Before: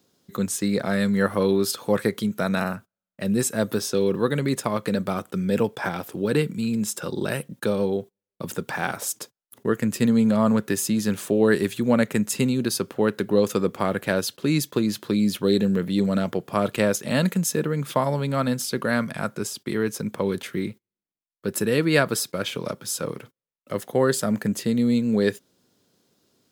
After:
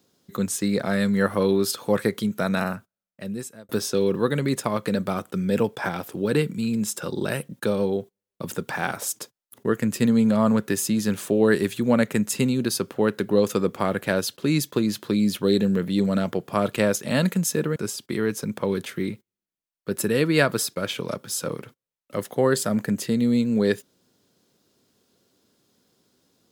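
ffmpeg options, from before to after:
ffmpeg -i in.wav -filter_complex "[0:a]asplit=3[link_01][link_02][link_03];[link_01]atrim=end=3.69,asetpts=PTS-STARTPTS,afade=type=out:start_time=2.72:duration=0.97[link_04];[link_02]atrim=start=3.69:end=17.762,asetpts=PTS-STARTPTS,afade=type=in:duration=0.004:curve=hsin[link_05];[link_03]atrim=start=19.328[link_06];[link_04][link_05]concat=n=2:v=0:a=1[link_07];[link_07][link_06]acrossfade=duration=0.004:curve1=hsin:curve2=hsin" out.wav

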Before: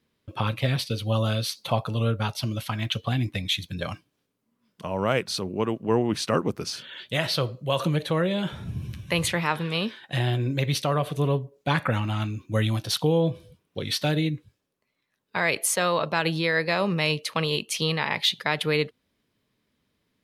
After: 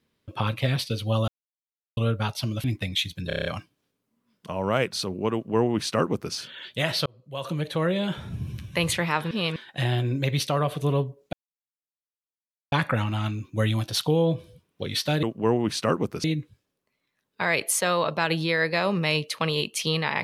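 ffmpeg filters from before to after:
ffmpeg -i in.wav -filter_complex "[0:a]asplit=16[link_01][link_02][link_03][link_04][link_05][link_06][link_07][link_08][link_09][link_10][link_11][link_12][link_13][link_14][link_15][link_16];[link_01]atrim=end=1.28,asetpts=PTS-STARTPTS,afade=type=out:start_time=1.276:duration=0.004:curve=hsin[link_17];[link_02]atrim=start=1.28:end=1.97,asetpts=PTS-STARTPTS,volume=0[link_18];[link_03]atrim=start=1.97:end=2.642,asetpts=PTS-STARTPTS,afade=type=in:duration=0.004:curve=hsin[link_19];[link_04]atrim=start=3.168:end=3.832[link_20];[link_05]atrim=start=3.798:end=3.832[link_21];[link_06]atrim=start=3.798:end=3.832[link_22];[link_07]atrim=start=3.798:end=3.832[link_23];[link_08]atrim=start=3.798:end=3.832[link_24];[link_09]atrim=start=3.798:end=3.832[link_25];[link_10]atrim=start=3.798:end=7.41,asetpts=PTS-STARTPTS,afade=type=out:start_time=3.608:duration=0.004:curve=hsin[link_26];[link_11]atrim=start=7.41:end=9.662,asetpts=PTS-STARTPTS,afade=type=in:duration=0.83[link_27];[link_12]atrim=start=9.658:end=9.912,asetpts=PTS-STARTPTS,areverse[link_28];[link_13]atrim=start=9.908:end=11.68,asetpts=PTS-STARTPTS,afade=type=out:start_time=1.768:duration=0.004:curve=hsin,apad=pad_dur=1.39[link_29];[link_14]atrim=start=11.68:end=14.192,asetpts=PTS-STARTPTS,afade=type=in:duration=0.004:curve=hsin[link_30];[link_15]atrim=start=5.678:end=6.692[link_31];[link_16]atrim=start=14.188[link_32];[link_17][link_18][link_19]concat=n=3:v=0:a=1[link_33];[link_33][link_20]acrossfade=duration=0.004:curve1=hsin:curve2=hsin[link_34];[link_34][link_21]acrossfade=duration=0.004:curve1=hsin:curve2=hsin[link_35];[link_35][link_22]acrossfade=duration=0.004:curve1=hsin:curve2=hsin[link_36];[link_36][link_23]acrossfade=duration=0.004:curve1=hsin:curve2=hsin[link_37];[link_37][link_24]acrossfade=duration=0.004:curve1=hsin:curve2=hsin[link_38];[link_38][link_25]acrossfade=duration=0.004:curve1=hsin:curve2=hsin[link_39];[link_26][link_27]concat=n=2:v=0:a=1[link_40];[link_39][link_40]acrossfade=duration=0.004:curve1=hsin:curve2=hsin[link_41];[link_41][link_28]acrossfade=duration=0.004:curve1=hsin:curve2=hsin[link_42];[link_29][link_30]concat=n=2:v=0:a=1[link_43];[link_42][link_43]acrossfade=duration=0.004:curve1=hsin:curve2=hsin[link_44];[link_44][link_31]acrossfade=duration=0.004:curve1=hsin:curve2=hsin[link_45];[link_45][link_32]acrossfade=duration=0.004:curve1=hsin:curve2=hsin" out.wav

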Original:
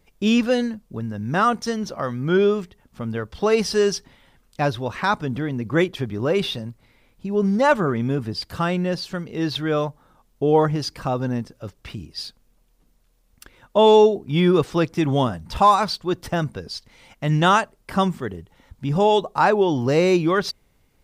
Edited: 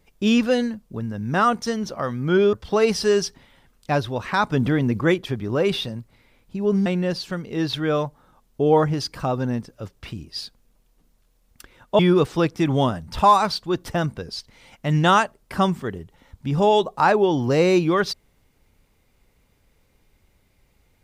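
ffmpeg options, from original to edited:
ffmpeg -i in.wav -filter_complex "[0:a]asplit=6[link_01][link_02][link_03][link_04][link_05][link_06];[link_01]atrim=end=2.532[link_07];[link_02]atrim=start=3.228:end=5.222[link_08];[link_03]atrim=start=5.218:end=5.712,asetpts=PTS-STARTPTS,volume=5.5dB[link_09];[link_04]atrim=start=5.708:end=7.562[link_10];[link_05]atrim=start=8.678:end=13.812[link_11];[link_06]atrim=start=14.368[link_12];[link_07][link_08]acrossfade=duration=0.004:curve1=hsin:curve2=hsin[link_13];[link_13][link_09]acrossfade=duration=0.004:curve1=hsin:curve2=hsin[link_14];[link_14][link_10]acrossfade=duration=0.004:curve1=hsin:curve2=hsin[link_15];[link_15][link_11]acrossfade=duration=0.004:curve1=hsin:curve2=hsin[link_16];[link_16][link_12]acrossfade=duration=0.004:curve1=hsin:curve2=hsin" out.wav

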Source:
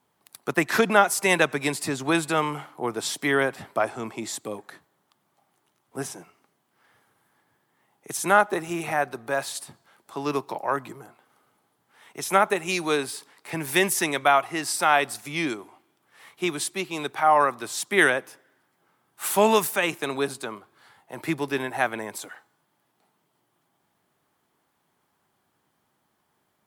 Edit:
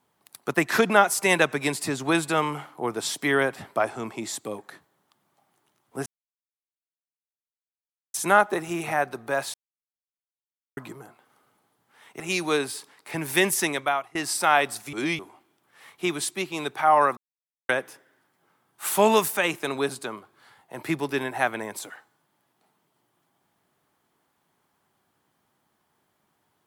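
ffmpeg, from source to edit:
ffmpeg -i in.wav -filter_complex "[0:a]asplit=11[link_01][link_02][link_03][link_04][link_05][link_06][link_07][link_08][link_09][link_10][link_11];[link_01]atrim=end=6.06,asetpts=PTS-STARTPTS,afade=type=out:start_time=6.056:duration=0.004:curve=hsin[link_12];[link_02]atrim=start=6.06:end=8.14,asetpts=PTS-STARTPTS,volume=0[link_13];[link_03]atrim=start=8.14:end=9.54,asetpts=PTS-STARTPTS,afade=type=in:duration=0.004:curve=hsin,afade=type=out:start_time=1.396:duration=0.004:curve=hsin[link_14];[link_04]atrim=start=9.54:end=10.77,asetpts=PTS-STARTPTS,volume=0[link_15];[link_05]atrim=start=10.77:end=12.202,asetpts=PTS-STARTPTS,afade=type=in:duration=0.004:curve=hsin[link_16];[link_06]atrim=start=12.588:end=14.54,asetpts=PTS-STARTPTS,afade=type=out:start_time=1.452:duration=0.5:silence=0.0749894[link_17];[link_07]atrim=start=14.54:end=15.322,asetpts=PTS-STARTPTS,afade=type=in:duration=0.004:curve=hsin:silence=0.0749894[link_18];[link_08]atrim=start=15.318:end=15.582,asetpts=PTS-STARTPTS,areverse[link_19];[link_09]atrim=start=15.578:end=17.56,asetpts=PTS-STARTPTS,afade=type=out:start_time=1.978:duration=0.004:curve=hsin[link_20];[link_10]atrim=start=17.56:end=18.08,asetpts=PTS-STARTPTS,volume=0[link_21];[link_11]atrim=start=18.08,asetpts=PTS-STARTPTS,afade=type=in:duration=0.004:curve=hsin[link_22];[link_12][link_13][link_14][link_15][link_16]concat=n=5:v=0:a=1[link_23];[link_17][link_18]concat=n=2:v=0:a=1[link_24];[link_23][link_24]acrossfade=duration=0.004:curve1=hsin:curve2=hsin[link_25];[link_25][link_19]acrossfade=duration=0.004:curve1=hsin:curve2=hsin[link_26];[link_20][link_21][link_22]concat=n=3:v=0:a=1[link_27];[link_26][link_27]acrossfade=duration=0.004:curve1=hsin:curve2=hsin" out.wav

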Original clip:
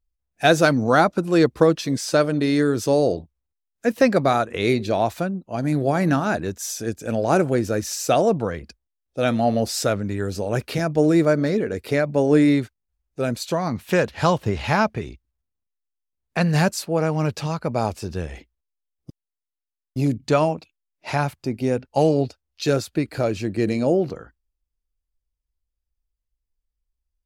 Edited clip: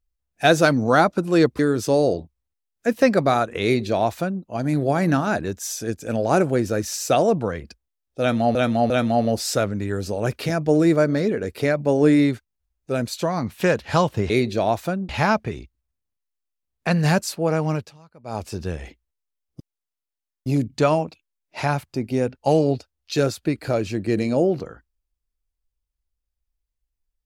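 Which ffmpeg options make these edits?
ffmpeg -i in.wav -filter_complex "[0:a]asplit=8[link_01][link_02][link_03][link_04][link_05][link_06][link_07][link_08];[link_01]atrim=end=1.592[link_09];[link_02]atrim=start=2.578:end=9.542[link_10];[link_03]atrim=start=9.188:end=9.542[link_11];[link_04]atrim=start=9.188:end=14.592[link_12];[link_05]atrim=start=4.628:end=5.422[link_13];[link_06]atrim=start=14.588:end=17.43,asetpts=PTS-STARTPTS,afade=type=out:start_time=2.602:duration=0.24:silence=0.0668344[link_14];[link_07]atrim=start=17.43:end=17.73,asetpts=PTS-STARTPTS,volume=-23.5dB[link_15];[link_08]atrim=start=17.73,asetpts=PTS-STARTPTS,afade=type=in:duration=0.24:silence=0.0668344[link_16];[link_09][link_10]acrossfade=duration=0.004:curve1=hsin:curve2=hsin[link_17];[link_17][link_11]acrossfade=duration=0.004:curve1=hsin:curve2=hsin[link_18];[link_18][link_12]acrossfade=duration=0.004:curve1=hsin:curve2=hsin[link_19];[link_19][link_13]acrossfade=duration=0.004:curve1=hsin:curve2=hsin[link_20];[link_14][link_15][link_16]concat=n=3:v=0:a=1[link_21];[link_20][link_21]acrossfade=duration=0.004:curve1=hsin:curve2=hsin" out.wav

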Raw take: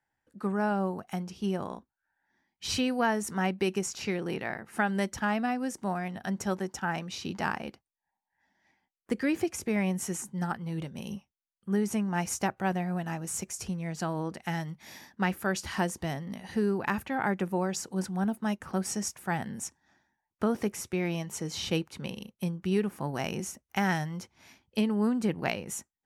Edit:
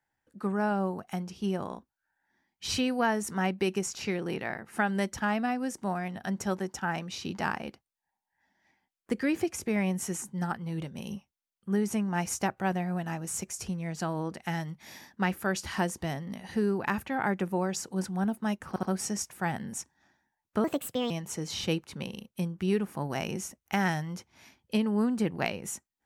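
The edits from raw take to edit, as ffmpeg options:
ffmpeg -i in.wav -filter_complex "[0:a]asplit=5[link_01][link_02][link_03][link_04][link_05];[link_01]atrim=end=18.762[link_06];[link_02]atrim=start=18.688:end=18.762[link_07];[link_03]atrim=start=18.688:end=20.504[link_08];[link_04]atrim=start=20.5:end=21.14,asetpts=PTS-STARTPTS,asetrate=60858,aresample=44100,atrim=end_sample=20452,asetpts=PTS-STARTPTS[link_09];[link_05]atrim=start=21.136[link_10];[link_06][link_07]acrossfade=duration=0.004:curve1=hsin:curve2=hsin[link_11];[link_11][link_08]acrossfade=duration=0.004:curve1=hsin:curve2=hsin[link_12];[link_12][link_09]acrossfade=duration=0.004:curve1=hsin:curve2=hsin[link_13];[link_13][link_10]acrossfade=duration=0.004:curve1=hsin:curve2=hsin" out.wav

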